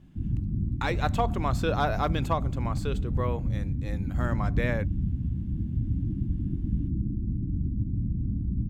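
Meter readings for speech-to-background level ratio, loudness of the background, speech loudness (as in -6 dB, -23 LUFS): -1.5 dB, -30.5 LUFS, -32.0 LUFS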